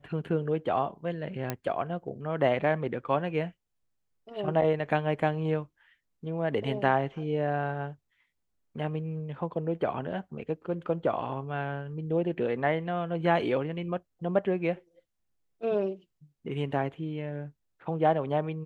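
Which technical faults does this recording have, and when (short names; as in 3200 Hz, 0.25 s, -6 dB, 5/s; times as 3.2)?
1.5 pop -15 dBFS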